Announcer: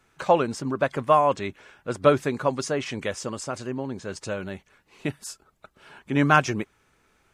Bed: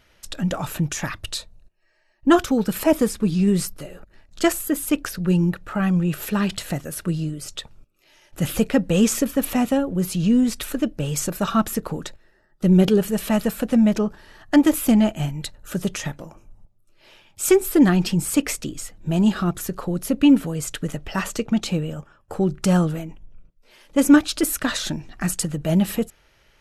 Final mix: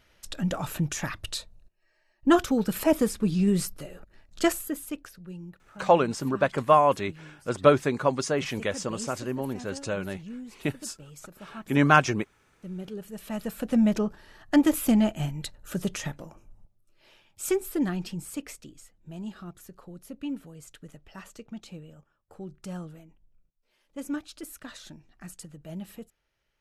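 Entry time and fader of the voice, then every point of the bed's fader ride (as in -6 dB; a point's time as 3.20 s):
5.60 s, 0.0 dB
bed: 4.48 s -4.5 dB
5.32 s -22.5 dB
12.84 s -22.5 dB
13.78 s -5 dB
16.68 s -5 dB
19.04 s -19.5 dB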